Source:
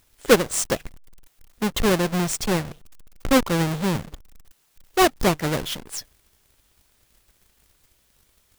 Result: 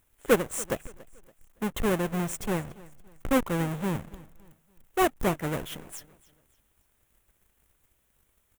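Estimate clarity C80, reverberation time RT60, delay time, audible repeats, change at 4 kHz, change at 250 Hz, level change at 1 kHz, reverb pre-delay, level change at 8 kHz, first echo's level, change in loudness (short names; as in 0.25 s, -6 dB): none, none, 0.283 s, 2, -12.5 dB, -6.0 dB, -6.5 dB, none, -9.5 dB, -21.0 dB, -6.5 dB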